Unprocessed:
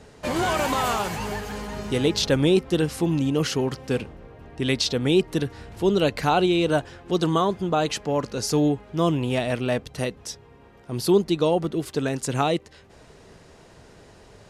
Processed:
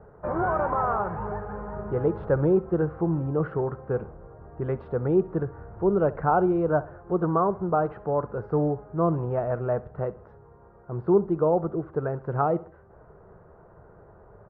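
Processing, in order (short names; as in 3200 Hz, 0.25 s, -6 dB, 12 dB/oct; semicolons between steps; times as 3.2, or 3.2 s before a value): Chebyshev low-pass 1400 Hz, order 4; bell 260 Hz -14 dB 0.32 oct; on a send: feedback echo 66 ms, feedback 44%, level -19 dB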